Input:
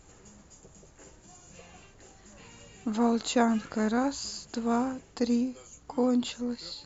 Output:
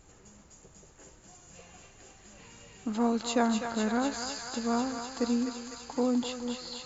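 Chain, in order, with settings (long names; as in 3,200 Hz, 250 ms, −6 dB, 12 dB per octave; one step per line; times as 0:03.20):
feedback echo with a high-pass in the loop 251 ms, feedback 85%, high-pass 770 Hz, level −5 dB
level −2 dB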